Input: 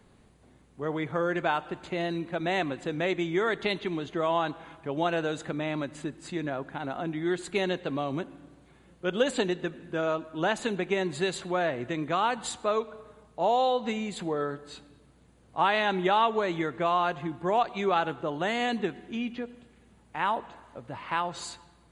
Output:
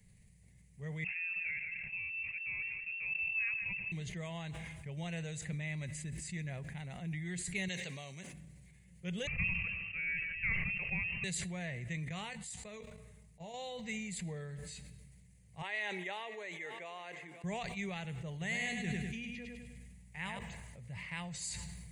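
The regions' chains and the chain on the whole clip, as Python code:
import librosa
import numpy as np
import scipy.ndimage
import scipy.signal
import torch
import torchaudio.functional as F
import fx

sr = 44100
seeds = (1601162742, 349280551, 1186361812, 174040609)

y = fx.chain(x, sr, fx.ladder_highpass(hz=290.0, resonance_pct=55),
    fx.echo_single(ms=180, db=-11.0),
    fx.freq_invert(carrier_hz=3000), at=(1.04, 3.92))
y = fx.chain(y, sr, fx.highpass(hz=560.0, slope=6),
    fx.peak_eq(hz=5900.0, db=7.5, octaves=0.82), at=(7.68, 8.33))
y = fx.chain(y, sr, fx.tilt_shelf(db=-7.0, hz=1400.0),
    fx.freq_invert(carrier_hz=2900),
    fx.sustainer(db_per_s=57.0), at=(9.27, 11.24))
y = fx.chain(y, sr, fx.level_steps(step_db=15),
    fx.doubler(ms=19.0, db=-12), at=(12.05, 13.54))
y = fx.chain(y, sr, fx.highpass(hz=340.0, slope=24),
    fx.high_shelf(hz=2600.0, db=-7.5),
    fx.echo_single(ms=535, db=-19.0), at=(15.62, 17.44))
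y = fx.chain(y, sr, fx.echo_feedback(ms=100, feedback_pct=44, wet_db=-5.5),
    fx.sustainer(db_per_s=44.0), at=(18.31, 20.39))
y = fx.curve_eq(y, sr, hz=(180.0, 290.0, 450.0, 1400.0, 2000.0, 3500.0, 5000.0, 7800.0), db=(0, -26, -16, -25, 0, -12, -3, 3))
y = fx.sustainer(y, sr, db_per_s=25.0)
y = y * librosa.db_to_amplitude(-1.5)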